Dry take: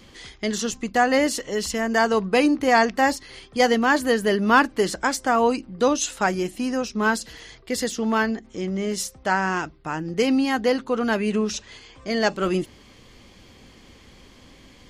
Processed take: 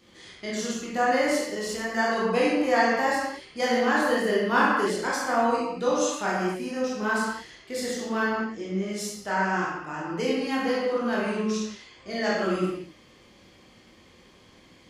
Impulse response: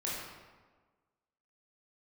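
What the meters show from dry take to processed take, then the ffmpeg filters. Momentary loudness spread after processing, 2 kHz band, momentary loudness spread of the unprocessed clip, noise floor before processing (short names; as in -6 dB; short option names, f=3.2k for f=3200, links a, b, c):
10 LU, -3.0 dB, 11 LU, -50 dBFS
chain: -filter_complex "[0:a]highpass=f=130:p=1[a];[1:a]atrim=start_sample=2205,afade=t=out:st=0.35:d=0.01,atrim=end_sample=15876[b];[a][b]afir=irnorm=-1:irlink=0,volume=-7dB"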